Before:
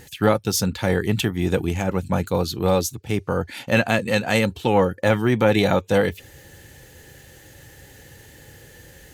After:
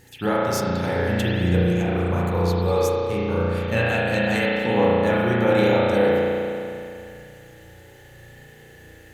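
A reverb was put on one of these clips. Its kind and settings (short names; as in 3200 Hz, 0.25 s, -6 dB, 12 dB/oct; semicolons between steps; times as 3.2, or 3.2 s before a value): spring tank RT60 2.6 s, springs 34 ms, chirp 70 ms, DRR -7.5 dB; gain -8 dB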